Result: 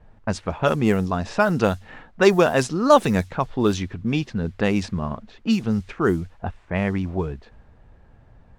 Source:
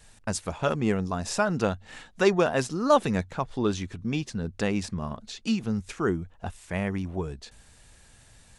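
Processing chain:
background noise blue −55 dBFS
low-pass that shuts in the quiet parts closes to 830 Hz, open at −20 dBFS
level +6 dB

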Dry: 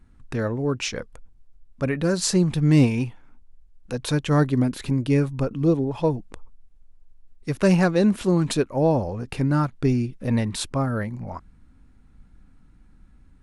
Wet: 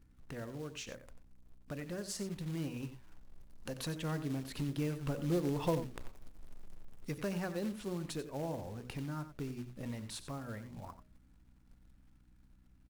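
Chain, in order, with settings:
source passing by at 0:05.90, 7 m/s, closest 1.9 metres
mains-hum notches 60/120/180/240/300/360/420/480/540/600 Hz
downward compressor 2.5 to 1, threshold −58 dBFS, peak gain reduction 25 dB
floating-point word with a short mantissa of 2 bits
mains hum 60 Hz, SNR 26 dB
wrong playback speed 24 fps film run at 25 fps
single-tap delay 91 ms −12 dB
level +14.5 dB

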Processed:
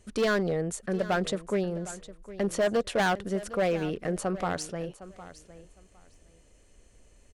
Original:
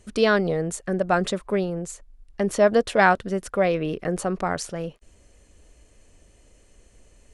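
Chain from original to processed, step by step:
hard clipping −17 dBFS, distortion −10 dB
on a send: repeating echo 759 ms, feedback 18%, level −16 dB
on the sum: level −4 dB

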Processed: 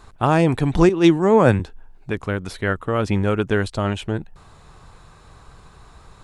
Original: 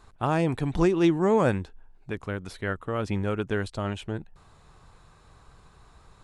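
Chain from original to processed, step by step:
0:00.89–0:01.60: multiband upward and downward expander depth 100%
level +8 dB

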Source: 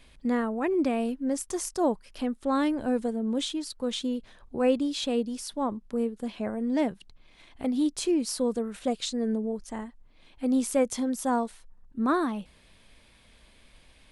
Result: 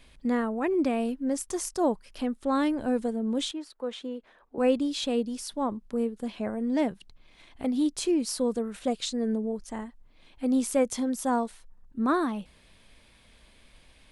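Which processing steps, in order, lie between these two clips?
0:03.51–0:04.58: three-way crossover with the lows and the highs turned down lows −19 dB, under 290 Hz, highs −14 dB, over 2,500 Hz

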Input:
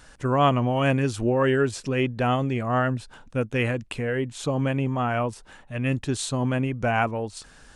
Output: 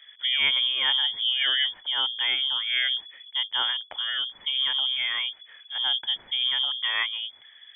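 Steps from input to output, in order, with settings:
low-pass that shuts in the quiet parts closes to 1,700 Hz, open at −17.5 dBFS
phaser with its sweep stopped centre 1,600 Hz, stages 4
voice inversion scrambler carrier 3,400 Hz

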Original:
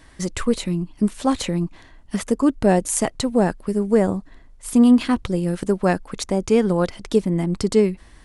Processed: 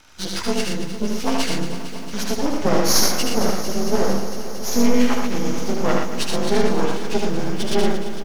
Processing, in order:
partials spread apart or drawn together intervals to 87%
spectral tilt +2.5 dB per octave
half-wave rectification
on a send: loudspeakers that aren't time-aligned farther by 26 metres −3 dB, 40 metres −5 dB
on the sum: feedback echo at a low word length 227 ms, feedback 80%, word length 8 bits, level −12 dB
level +4.5 dB

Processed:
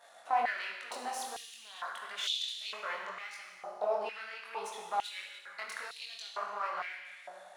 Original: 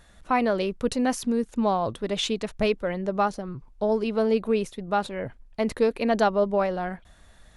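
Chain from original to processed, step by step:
gain on one half-wave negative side −7 dB
downward compressor, threshold −28 dBFS, peak gain reduction 10 dB
brickwall limiter −26 dBFS, peak gain reduction 8.5 dB
speech leveller 2 s
four-comb reverb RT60 1.7 s, combs from 33 ms, DRR 1.5 dB
multi-voice chorus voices 2, 1.4 Hz, delay 22 ms, depth 3 ms
high-pass on a step sequencer 2.2 Hz 710–3,600 Hz
level +1.5 dB

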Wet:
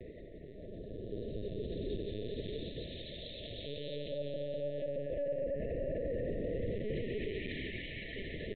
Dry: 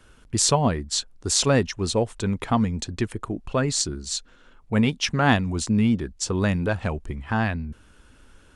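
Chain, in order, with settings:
source passing by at 0:03.17, 10 m/s, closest 1.6 metres
treble cut that deepens with the level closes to 560 Hz, closed at −31 dBFS
reversed playback
downward compressor 6 to 1, threshold −46 dBFS, peak gain reduction 19.5 dB
reversed playback
parametric band 590 Hz +11 dB 1.2 octaves
repeating echo 319 ms, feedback 24%, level −10.5 dB
extreme stretch with random phases 14×, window 0.25 s, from 0:01.10
linear-prediction vocoder at 8 kHz pitch kept
brickwall limiter −41.5 dBFS, peak gain reduction 11.5 dB
linear-phase brick-wall band-stop 690–1,700 Hz
level +13 dB

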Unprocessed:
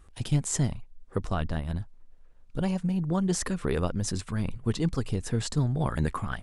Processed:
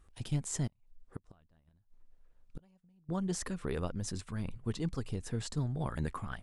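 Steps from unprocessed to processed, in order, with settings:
0:00.67–0:03.09: gate with flip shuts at −24 dBFS, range −30 dB
level −8 dB

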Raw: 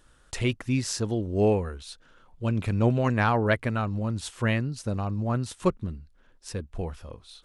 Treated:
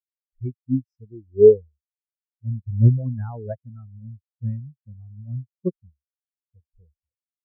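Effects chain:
every bin expanded away from the loudest bin 4 to 1
level +8 dB

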